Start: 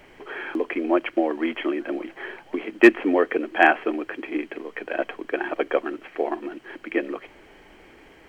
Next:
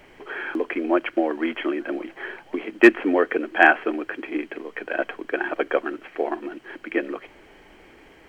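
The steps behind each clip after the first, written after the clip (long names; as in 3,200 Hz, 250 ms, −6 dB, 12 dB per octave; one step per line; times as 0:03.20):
dynamic equaliser 1,500 Hz, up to +5 dB, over −45 dBFS, Q 4.4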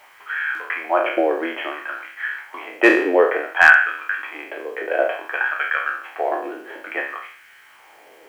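peak hold with a decay on every bin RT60 0.61 s
auto-filter high-pass sine 0.57 Hz 450–1,600 Hz
bit-depth reduction 10 bits, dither triangular
level −1 dB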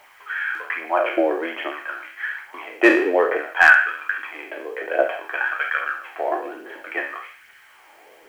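phase shifter 1.2 Hz, delay 3.6 ms, feedback 36%
level −2 dB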